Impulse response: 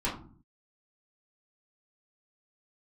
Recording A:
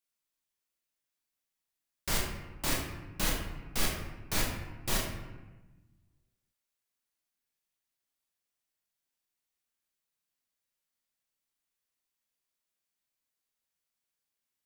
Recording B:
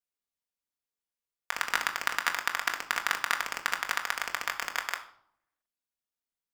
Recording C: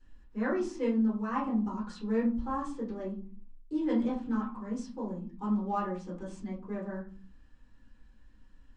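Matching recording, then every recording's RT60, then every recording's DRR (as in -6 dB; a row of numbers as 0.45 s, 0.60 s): C; 1.2 s, 0.65 s, 0.45 s; -2.0 dB, 2.5 dB, -6.5 dB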